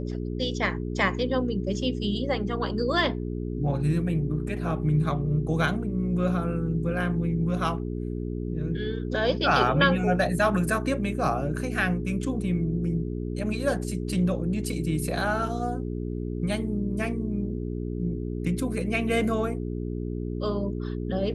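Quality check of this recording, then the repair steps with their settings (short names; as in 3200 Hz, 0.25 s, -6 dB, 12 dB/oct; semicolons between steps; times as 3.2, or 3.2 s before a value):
hum 60 Hz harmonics 7 -31 dBFS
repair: de-hum 60 Hz, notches 7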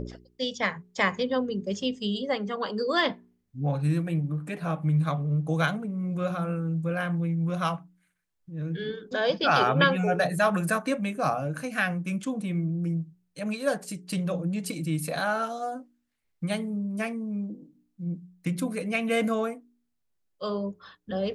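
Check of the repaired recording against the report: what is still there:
none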